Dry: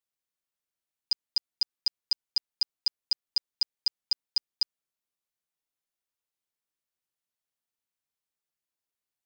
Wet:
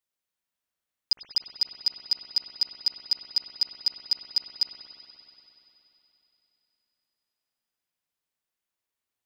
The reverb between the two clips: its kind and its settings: spring tank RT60 3.5 s, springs 59 ms, chirp 45 ms, DRR 0.5 dB; trim +1.5 dB

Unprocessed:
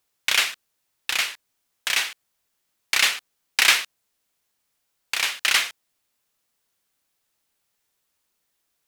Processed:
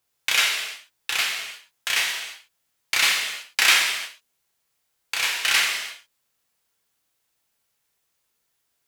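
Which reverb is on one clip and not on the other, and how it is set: gated-style reverb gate 370 ms falling, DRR -1 dB; trim -2.5 dB

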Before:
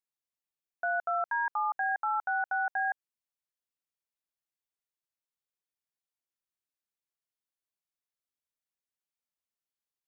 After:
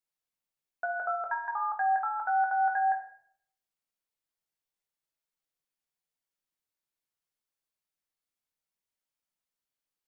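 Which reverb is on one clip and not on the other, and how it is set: simulated room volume 110 m³, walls mixed, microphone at 0.62 m

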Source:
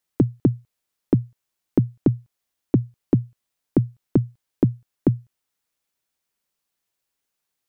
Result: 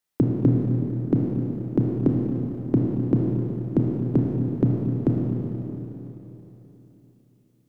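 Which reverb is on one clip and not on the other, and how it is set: Schroeder reverb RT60 3.6 s, combs from 25 ms, DRR -2 dB; trim -3 dB

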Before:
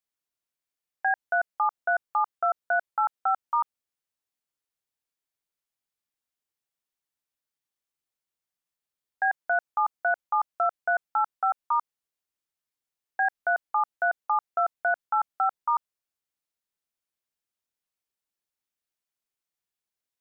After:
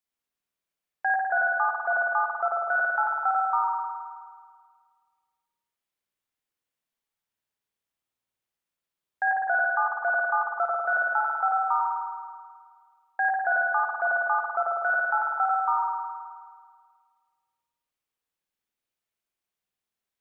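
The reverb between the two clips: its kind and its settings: spring tank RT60 1.8 s, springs 52 ms, chirp 45 ms, DRR -2.5 dB; trim -1 dB

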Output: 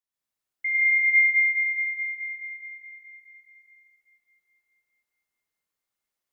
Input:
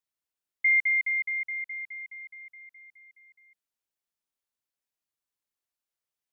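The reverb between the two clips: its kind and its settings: plate-style reverb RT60 4 s, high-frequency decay 0.55×, pre-delay 85 ms, DRR -9.5 dB; trim -5 dB

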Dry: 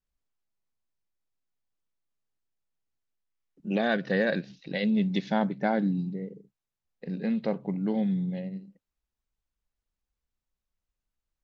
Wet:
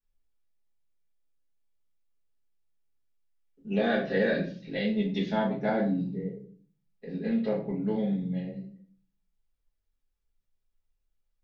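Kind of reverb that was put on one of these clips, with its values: simulated room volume 35 m³, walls mixed, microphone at 1.4 m; trim -9.5 dB

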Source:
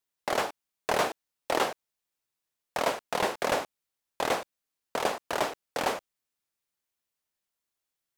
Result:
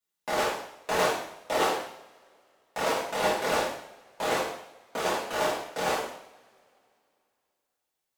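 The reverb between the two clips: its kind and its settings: two-slope reverb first 0.7 s, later 2.8 s, from -26 dB, DRR -9 dB; trim -7.5 dB

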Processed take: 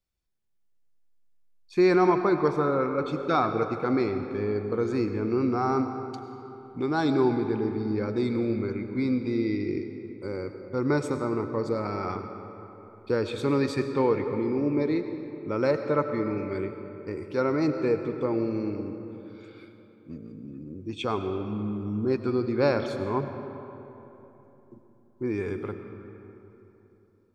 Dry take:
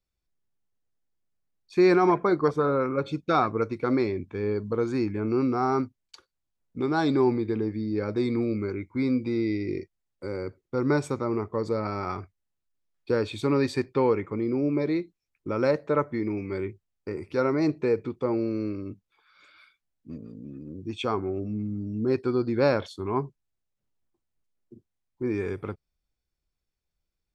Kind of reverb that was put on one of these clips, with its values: algorithmic reverb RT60 3.4 s, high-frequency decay 0.55×, pre-delay 60 ms, DRR 7.5 dB; trim -1 dB

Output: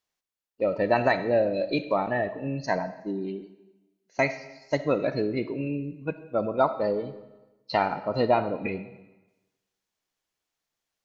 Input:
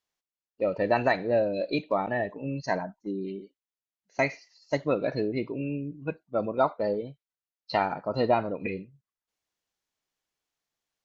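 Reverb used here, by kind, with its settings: algorithmic reverb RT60 1.1 s, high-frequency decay 0.95×, pre-delay 20 ms, DRR 13 dB; trim +1.5 dB

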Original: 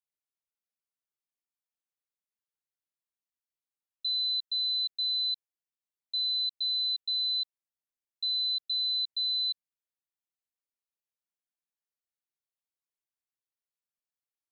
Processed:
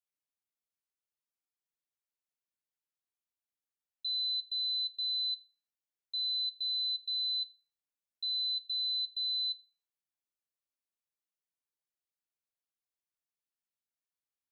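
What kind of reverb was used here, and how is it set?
FDN reverb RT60 0.45 s, high-frequency decay 0.75×, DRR 14.5 dB; trim -4.5 dB

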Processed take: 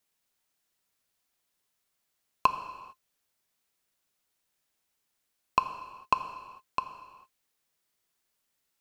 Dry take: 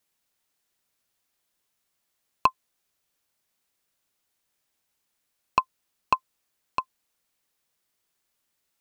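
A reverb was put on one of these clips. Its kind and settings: gated-style reverb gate 480 ms falling, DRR 8 dB; trim -2.5 dB

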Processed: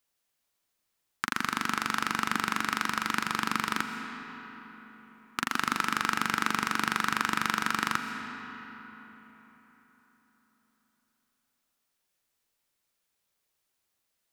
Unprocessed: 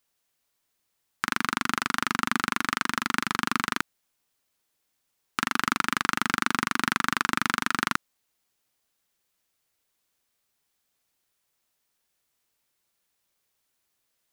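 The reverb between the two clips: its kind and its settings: algorithmic reverb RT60 4.3 s, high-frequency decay 0.6×, pre-delay 90 ms, DRR 5.5 dB; trim -3.5 dB

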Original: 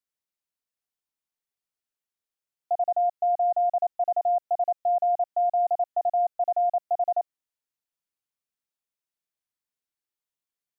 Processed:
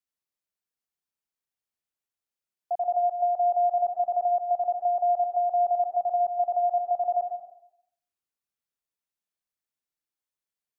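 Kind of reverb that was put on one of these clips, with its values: plate-style reverb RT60 0.72 s, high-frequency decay 0.45×, pre-delay 95 ms, DRR 4.5 dB; trim -3 dB

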